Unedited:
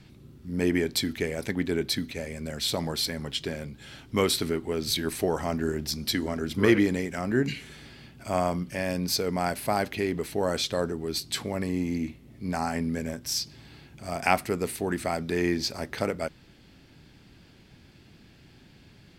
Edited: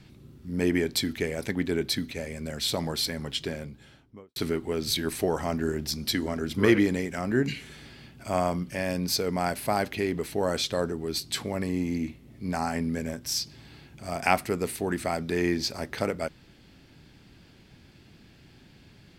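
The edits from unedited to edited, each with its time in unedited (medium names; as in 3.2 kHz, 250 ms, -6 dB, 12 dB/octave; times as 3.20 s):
3.44–4.36 s: studio fade out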